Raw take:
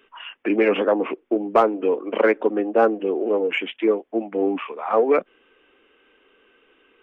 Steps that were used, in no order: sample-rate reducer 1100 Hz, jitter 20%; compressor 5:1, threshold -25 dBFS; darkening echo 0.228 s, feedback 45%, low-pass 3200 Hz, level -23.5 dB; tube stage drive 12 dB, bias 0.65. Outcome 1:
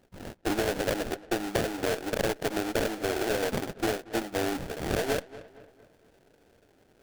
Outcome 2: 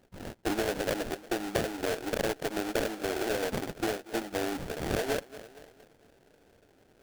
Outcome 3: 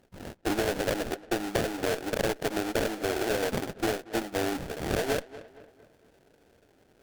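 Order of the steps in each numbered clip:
tube stage > sample-rate reducer > darkening echo > compressor; darkening echo > compressor > tube stage > sample-rate reducer; sample-rate reducer > darkening echo > tube stage > compressor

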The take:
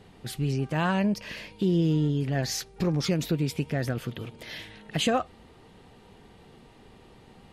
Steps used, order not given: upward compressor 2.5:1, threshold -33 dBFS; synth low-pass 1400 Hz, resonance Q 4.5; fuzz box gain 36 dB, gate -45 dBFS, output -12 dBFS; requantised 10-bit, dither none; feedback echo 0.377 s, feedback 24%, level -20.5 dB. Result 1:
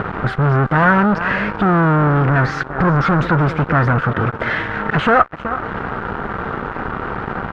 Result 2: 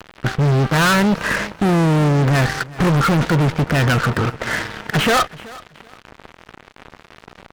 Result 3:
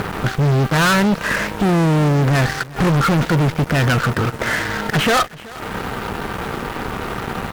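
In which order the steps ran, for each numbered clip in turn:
upward compressor > feedback echo > requantised > fuzz box > synth low-pass; requantised > synth low-pass > fuzz box > upward compressor > feedback echo; synth low-pass > upward compressor > requantised > fuzz box > feedback echo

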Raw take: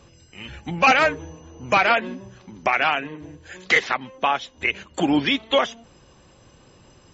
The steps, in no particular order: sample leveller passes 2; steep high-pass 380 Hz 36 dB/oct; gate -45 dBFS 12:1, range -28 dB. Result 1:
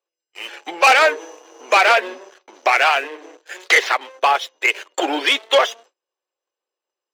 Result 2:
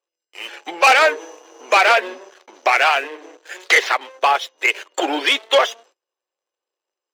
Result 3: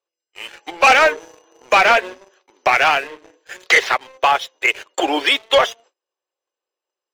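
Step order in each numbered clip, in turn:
gate > sample leveller > steep high-pass; sample leveller > gate > steep high-pass; gate > steep high-pass > sample leveller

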